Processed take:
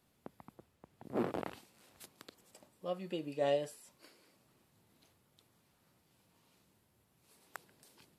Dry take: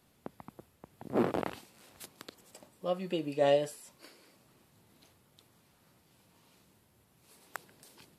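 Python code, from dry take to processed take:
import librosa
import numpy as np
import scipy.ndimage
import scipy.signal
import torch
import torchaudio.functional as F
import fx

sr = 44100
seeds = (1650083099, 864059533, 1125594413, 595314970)

y = fx.high_shelf(x, sr, hz=11000.0, db=-9.5, at=(0.55, 1.05))
y = y * librosa.db_to_amplitude(-6.0)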